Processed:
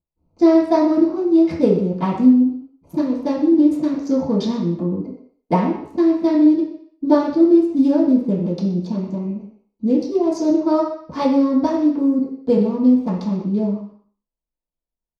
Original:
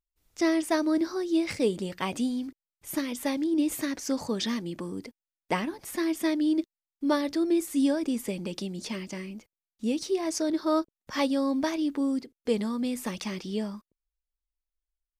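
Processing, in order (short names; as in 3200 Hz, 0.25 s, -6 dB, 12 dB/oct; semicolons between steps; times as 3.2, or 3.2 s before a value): Wiener smoothing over 25 samples; high shelf 3700 Hz -7 dB; outdoor echo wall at 21 m, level -14 dB; reverb RT60 0.55 s, pre-delay 3 ms, DRR -11 dB; gain -7 dB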